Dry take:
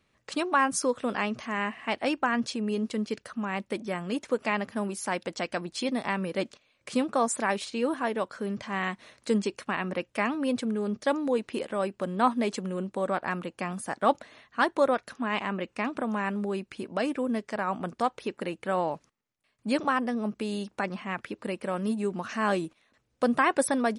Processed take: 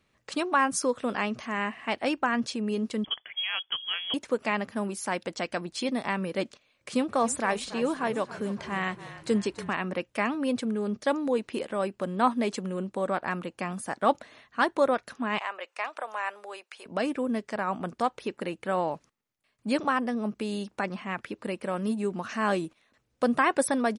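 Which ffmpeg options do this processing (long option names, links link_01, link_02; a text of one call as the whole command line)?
ffmpeg -i in.wav -filter_complex "[0:a]asettb=1/sr,asplit=3[link_01][link_02][link_03];[link_01]atrim=end=3.044[link_04];[link_02]atrim=start=3.04:end=4.14,asetpts=PTS-STARTPTS,afade=type=in:duration=0.004:curve=qsin,afade=type=out:start_time=1.096:duration=0.004:curve=qsin,lowpass=frequency=3000:width_type=q:width=0.5098,lowpass=frequency=3000:width_type=q:width=0.6013,lowpass=frequency=3000:width_type=q:width=0.9,lowpass=frequency=3000:width_type=q:width=2.563,afreqshift=-3500[link_05];[link_03]atrim=start=4.136[link_06];[link_04][link_05]acrossfade=duration=0.004:curve1=hsin:curve2=qsin[link_07];[link_07][link_06]acrossfade=duration=0.004:curve1=qsin:curve2=hsin,asplit=3[link_08][link_09][link_10];[link_08]afade=type=out:start_time=7.08:duration=0.02[link_11];[link_09]asplit=7[link_12][link_13][link_14][link_15][link_16][link_17][link_18];[link_13]adelay=284,afreqshift=-30,volume=-15dB[link_19];[link_14]adelay=568,afreqshift=-60,volume=-19.3dB[link_20];[link_15]adelay=852,afreqshift=-90,volume=-23.6dB[link_21];[link_16]adelay=1136,afreqshift=-120,volume=-27.9dB[link_22];[link_17]adelay=1420,afreqshift=-150,volume=-32.2dB[link_23];[link_18]adelay=1704,afreqshift=-180,volume=-36.5dB[link_24];[link_12][link_19][link_20][link_21][link_22][link_23][link_24]amix=inputs=7:normalize=0,afade=type=in:start_time=7.08:duration=0.02,afade=type=out:start_time=9.73:duration=0.02[link_25];[link_10]afade=type=in:start_time=9.73:duration=0.02[link_26];[link_11][link_25][link_26]amix=inputs=3:normalize=0,asettb=1/sr,asplit=3[link_27][link_28][link_29];[link_27]atrim=end=15.384[link_30];[link_28]atrim=start=15.38:end=16.86,asetpts=PTS-STARTPTS,afade=type=in:duration=0.004:curve=qsin,afade=type=out:start_time=1.476:duration=0.004:curve=qsin,highpass=frequency=580:width=0.5412,highpass=frequency=580:width=1.3066[link_31];[link_29]atrim=start=16.856[link_32];[link_30][link_31]acrossfade=duration=0.004:curve1=hsin:curve2=qsin[link_33];[link_33][link_32]acrossfade=duration=0.004:curve1=qsin:curve2=hsin" out.wav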